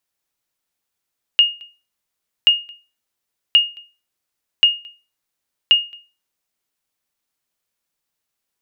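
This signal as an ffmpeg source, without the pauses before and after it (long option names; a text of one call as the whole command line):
ffmpeg -f lavfi -i "aevalsrc='0.631*(sin(2*PI*2850*mod(t,1.08))*exp(-6.91*mod(t,1.08)/0.31)+0.0376*sin(2*PI*2850*max(mod(t,1.08)-0.22,0))*exp(-6.91*max(mod(t,1.08)-0.22,0)/0.31))':duration=5.4:sample_rate=44100" out.wav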